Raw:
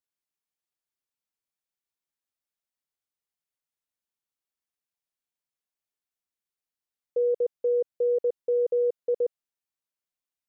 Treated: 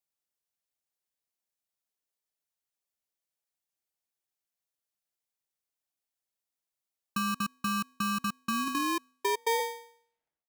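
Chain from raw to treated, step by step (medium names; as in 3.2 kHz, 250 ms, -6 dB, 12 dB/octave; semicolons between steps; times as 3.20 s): tape stop on the ending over 2.06 s; de-hum 217.7 Hz, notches 2; compression, threshold -26 dBFS, peak gain reduction 4.5 dB; tone controls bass +7 dB, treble +5 dB; polarity switched at an audio rate 690 Hz; trim -3 dB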